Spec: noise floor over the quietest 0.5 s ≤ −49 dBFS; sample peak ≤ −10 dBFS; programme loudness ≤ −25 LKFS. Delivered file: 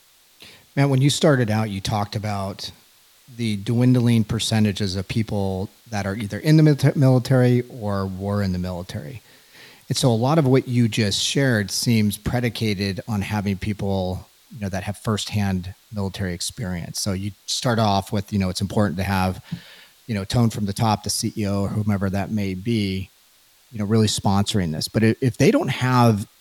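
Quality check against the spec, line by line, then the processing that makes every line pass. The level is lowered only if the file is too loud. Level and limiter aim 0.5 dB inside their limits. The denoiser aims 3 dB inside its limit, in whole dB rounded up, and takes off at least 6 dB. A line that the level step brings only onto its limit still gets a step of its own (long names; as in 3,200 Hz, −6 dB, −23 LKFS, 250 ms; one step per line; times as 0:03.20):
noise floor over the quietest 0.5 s −56 dBFS: in spec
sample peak −3.5 dBFS: out of spec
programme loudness −21.5 LKFS: out of spec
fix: level −4 dB
brickwall limiter −10.5 dBFS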